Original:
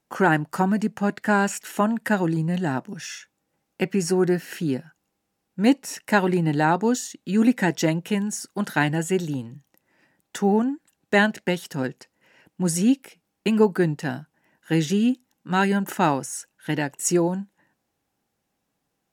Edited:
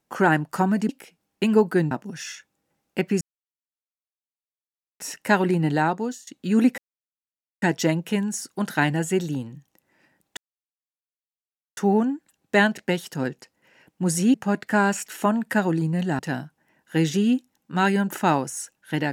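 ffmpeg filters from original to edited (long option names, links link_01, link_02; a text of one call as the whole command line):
ffmpeg -i in.wav -filter_complex "[0:a]asplit=10[link_01][link_02][link_03][link_04][link_05][link_06][link_07][link_08][link_09][link_10];[link_01]atrim=end=0.892[link_11];[link_02]atrim=start=12.928:end=13.952[link_12];[link_03]atrim=start=2.738:end=4.04,asetpts=PTS-STARTPTS,afade=type=out:start_time=1.298:duration=0.004:curve=hsin[link_13];[link_04]atrim=start=4.04:end=5.83,asetpts=PTS-STARTPTS,volume=0[link_14];[link_05]atrim=start=5.83:end=7.1,asetpts=PTS-STARTPTS,afade=type=in:duration=0.004:curve=hsin,afade=type=out:start_time=0.72:duration=0.55:silence=0.112202[link_15];[link_06]atrim=start=7.1:end=7.61,asetpts=PTS-STARTPTS,afade=type=in:duration=0.004:curve=hsin:silence=0.112202,afade=type=out:start_time=0.506:duration=0.004:curve=hsin,apad=pad_dur=0.84[link_16];[link_07]atrim=start=7.61:end=10.36,asetpts=PTS-STARTPTS,afade=type=in:duration=0.004:curve=hsin,afade=type=out:start_time=2.746:duration=0.004:curve=hsin,apad=pad_dur=1.4[link_17];[link_08]atrim=start=10.36:end=12.932,asetpts=PTS-STARTPTS,afade=type=in:duration=0.004:curve=hsin[link_18];[link_09]atrim=start=0.888:end=2.742[link_19];[link_10]atrim=start=13.948[link_20];[link_11][link_12]acrossfade=duration=0.004:curve1=hsin:curve2=hsin[link_21];[link_13][link_14][link_15][link_16][link_17][link_18]concat=n=6:v=0:a=1[link_22];[link_21][link_22]acrossfade=duration=0.004:curve1=hsin:curve2=hsin[link_23];[link_23][link_19]acrossfade=duration=0.004:curve1=hsin:curve2=hsin[link_24];[link_24][link_20]acrossfade=duration=0.004:curve1=hsin:curve2=hsin" out.wav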